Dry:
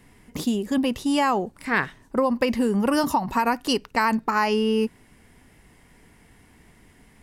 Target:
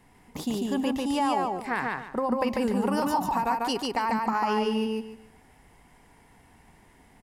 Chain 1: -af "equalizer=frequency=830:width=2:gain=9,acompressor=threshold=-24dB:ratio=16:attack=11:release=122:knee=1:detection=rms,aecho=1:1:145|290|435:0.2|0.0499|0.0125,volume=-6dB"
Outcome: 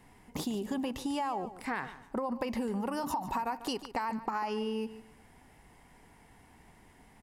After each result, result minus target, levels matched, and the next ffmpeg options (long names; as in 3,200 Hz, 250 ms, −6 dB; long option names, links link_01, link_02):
echo-to-direct −12 dB; downward compressor: peak gain reduction +6.5 dB
-af "equalizer=frequency=830:width=2:gain=9,acompressor=threshold=-24dB:ratio=16:attack=11:release=122:knee=1:detection=rms,aecho=1:1:145|290|435|580:0.794|0.199|0.0496|0.0124,volume=-6dB"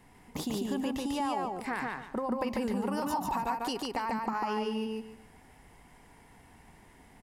downward compressor: peak gain reduction +6.5 dB
-af "equalizer=frequency=830:width=2:gain=9,acompressor=threshold=-17dB:ratio=16:attack=11:release=122:knee=1:detection=rms,aecho=1:1:145|290|435|580:0.794|0.199|0.0496|0.0124,volume=-6dB"